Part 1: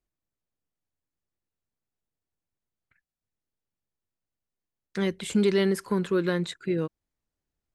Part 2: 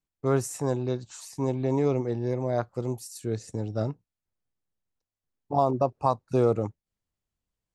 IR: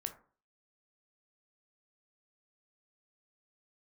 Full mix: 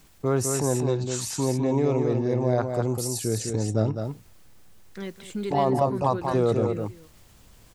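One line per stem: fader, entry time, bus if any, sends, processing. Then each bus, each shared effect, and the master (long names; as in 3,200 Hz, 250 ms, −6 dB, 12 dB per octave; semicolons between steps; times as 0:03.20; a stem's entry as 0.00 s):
−8.5 dB, 0.00 s, no send, echo send −14 dB, no processing
−1.0 dB, 0.00 s, no send, echo send −5 dB, envelope flattener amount 50%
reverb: not used
echo: single-tap delay 205 ms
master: no processing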